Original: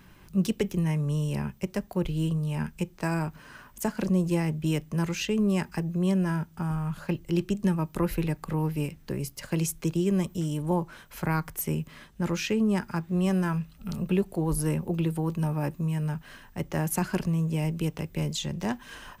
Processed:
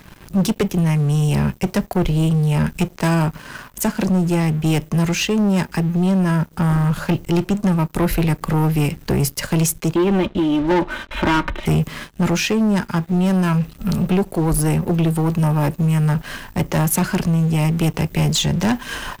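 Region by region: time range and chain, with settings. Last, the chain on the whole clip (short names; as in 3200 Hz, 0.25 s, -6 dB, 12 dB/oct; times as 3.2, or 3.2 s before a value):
9.95–11.66 comb 3.3 ms, depth 76% + sample leveller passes 1 + brick-wall FIR low-pass 4100 Hz
whole clip: vocal rider within 4 dB 0.5 s; sample leveller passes 3; gain +2 dB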